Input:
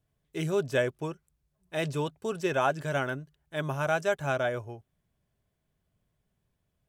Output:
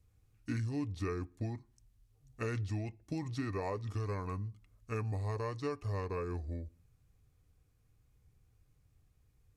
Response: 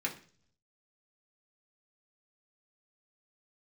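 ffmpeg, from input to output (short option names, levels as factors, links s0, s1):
-filter_complex "[0:a]bass=f=250:g=11,treble=f=4000:g=2,acompressor=threshold=0.0178:ratio=6,asetrate=31752,aresample=44100,asplit=2[s0][s1];[1:a]atrim=start_sample=2205[s2];[s1][s2]afir=irnorm=-1:irlink=0,volume=0.112[s3];[s0][s3]amix=inputs=2:normalize=0"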